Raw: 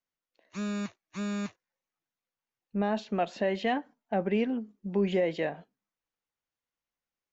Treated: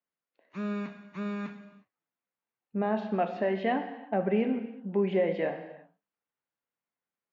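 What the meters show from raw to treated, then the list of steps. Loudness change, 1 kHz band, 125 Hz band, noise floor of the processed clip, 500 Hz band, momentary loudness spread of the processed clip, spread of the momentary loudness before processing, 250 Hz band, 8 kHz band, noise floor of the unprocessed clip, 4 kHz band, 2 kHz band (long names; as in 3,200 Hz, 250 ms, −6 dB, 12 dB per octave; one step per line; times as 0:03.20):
+0.5 dB, +1.0 dB, −0.5 dB, below −85 dBFS, +1.0 dB, 13 LU, 9 LU, 0.0 dB, can't be measured, below −85 dBFS, −6.0 dB, −1.0 dB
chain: band-pass filter 120–2,300 Hz
reverb whose tail is shaped and stops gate 390 ms falling, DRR 6 dB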